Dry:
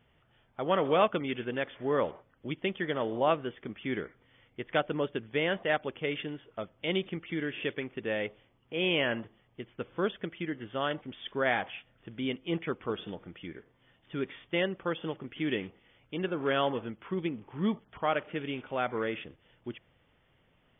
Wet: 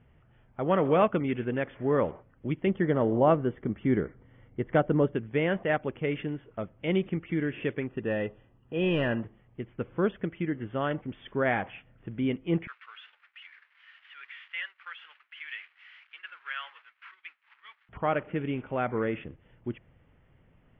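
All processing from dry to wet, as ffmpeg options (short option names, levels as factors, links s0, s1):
-filter_complex "[0:a]asettb=1/sr,asplit=3[s0][s1][s2];[s0]atrim=end=2.674[s3];[s1]atrim=start=2.67:end=5.15,asetpts=PTS-STARTPTS,afade=t=in:d=0.004:c=qsin,afade=t=out:st=2.476:d=0.004:c=qsin,tiltshelf=f=1400:g=4,bandreject=f=2500:w=9[s4];[s2]atrim=start=5.146[s5];[s3][s4]acrossfade=d=0.004:c1=hsin:c2=qsin[s6];[s6][s5]acrossfade=d=0.004:c1=qsin:c2=hsin,asettb=1/sr,asplit=3[s7][s8][s9];[s7]atrim=end=7.874[s10];[s8]atrim=start=7.87:end=9.22,asetpts=PTS-STARTPTS,afade=t=in:d=0.004:c=qsin,afade=t=out:st=1.346:d=0.004:c=qsin,aeval=exprs='clip(val(0),-1,0.0596)':c=same,asuperstop=centerf=2200:order=20:qfactor=6.6[s11];[s9]atrim=start=9.216[s12];[s10][s11]acrossfade=d=0.004:c1=hsin:c2=qsin[s13];[s13][s12]acrossfade=d=0.004:c1=qsin:c2=hsin,asettb=1/sr,asplit=3[s14][s15][s16];[s14]atrim=end=12.674[s17];[s15]atrim=start=12.67:end=17.89,asetpts=PTS-STARTPTS,afade=t=in:d=0.004:c=qsin,afade=t=out:st=5.216:d=0.004:c=qsin,aeval=exprs='val(0)+0.5*0.00891*sgn(val(0))':c=same,highpass=f=1500:w=0.5412,highpass=f=1500:w=1.3066,agate=range=0.0224:threshold=0.00447:ratio=3:release=100:detection=peak[s18];[s16]atrim=start=17.886[s19];[s17][s18]acrossfade=d=0.004:c1=hsin:c2=qsin[s20];[s20][s19]acrossfade=d=0.004:c1=qsin:c2=hsin,lowpass=f=2600:w=0.5412,lowpass=f=2600:w=1.3066,lowshelf=f=270:g=10.5"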